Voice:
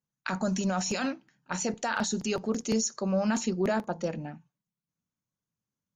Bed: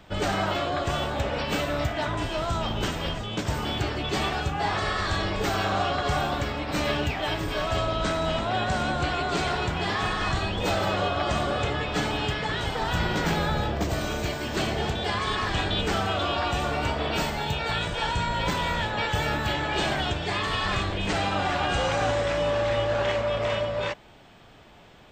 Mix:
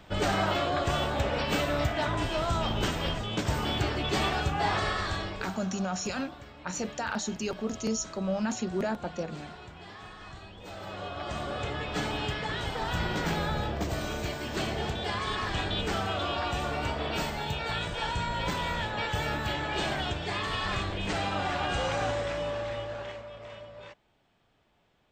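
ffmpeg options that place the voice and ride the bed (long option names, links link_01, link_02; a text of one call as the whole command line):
ffmpeg -i stem1.wav -i stem2.wav -filter_complex "[0:a]adelay=5150,volume=-3dB[link_01];[1:a]volume=13.5dB,afade=type=out:start_time=4.74:duration=0.85:silence=0.125893,afade=type=in:start_time=10.66:duration=1.39:silence=0.188365,afade=type=out:start_time=21.97:duration=1.32:silence=0.211349[link_02];[link_01][link_02]amix=inputs=2:normalize=0" out.wav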